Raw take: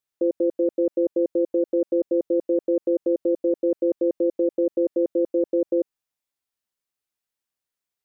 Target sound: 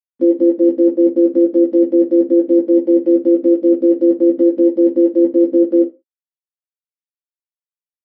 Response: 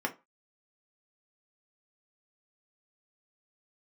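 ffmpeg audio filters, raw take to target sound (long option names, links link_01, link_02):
-filter_complex "[0:a]equalizer=frequency=125:width_type=o:width=1:gain=-8,equalizer=frequency=250:width_type=o:width=1:gain=7,equalizer=frequency=500:width_type=o:width=1:gain=-8,aresample=11025,aeval=exprs='val(0)*gte(abs(val(0)),0.00562)':channel_layout=same,aresample=44100,asplit=2[link_01][link_02];[link_02]asetrate=35002,aresample=44100,atempo=1.25992,volume=-18dB[link_03];[link_01][link_03]amix=inputs=2:normalize=0,asplit=2[link_04][link_05];[link_05]adelay=15,volume=-3dB[link_06];[link_04][link_06]amix=inputs=2:normalize=0[link_07];[1:a]atrim=start_sample=2205[link_08];[link_07][link_08]afir=irnorm=-1:irlink=0"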